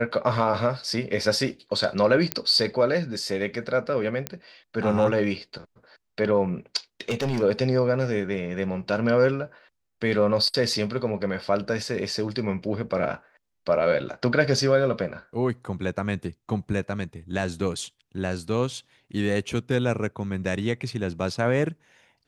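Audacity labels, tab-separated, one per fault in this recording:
2.320000	2.320000	pop -6 dBFS
4.270000	4.270000	pop -11 dBFS
7.010000	7.430000	clipped -21.5 dBFS

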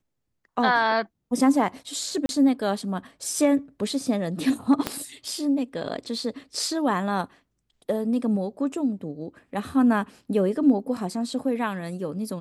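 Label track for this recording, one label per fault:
2.260000	2.290000	gap 31 ms
4.870000	4.870000	pop -9 dBFS

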